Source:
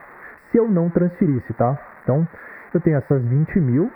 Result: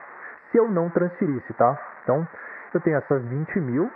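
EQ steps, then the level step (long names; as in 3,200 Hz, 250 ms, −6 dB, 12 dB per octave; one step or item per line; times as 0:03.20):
high-pass filter 640 Hz 6 dB per octave
low-pass filter 2,000 Hz 12 dB per octave
dynamic equaliser 1,200 Hz, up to +4 dB, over −38 dBFS, Q 1.2
+3.0 dB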